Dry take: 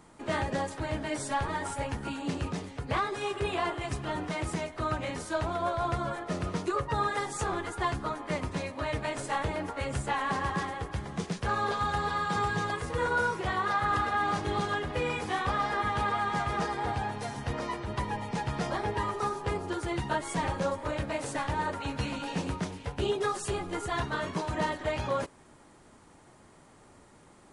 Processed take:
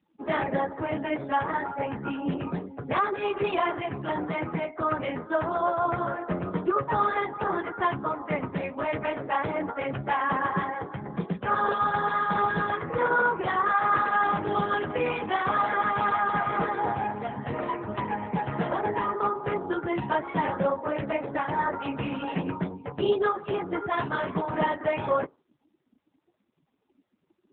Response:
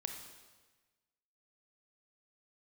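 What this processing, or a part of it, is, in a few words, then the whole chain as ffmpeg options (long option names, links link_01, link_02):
mobile call with aggressive noise cancelling: -af "highpass=140,afftdn=noise_reduction=27:noise_floor=-43,volume=5.5dB" -ar 8000 -c:a libopencore_amrnb -b:a 7950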